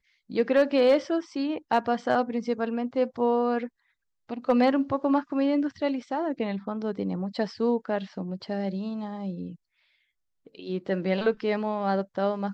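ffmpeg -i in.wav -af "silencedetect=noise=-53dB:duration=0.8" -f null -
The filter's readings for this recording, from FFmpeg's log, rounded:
silence_start: 9.56
silence_end: 10.46 | silence_duration: 0.91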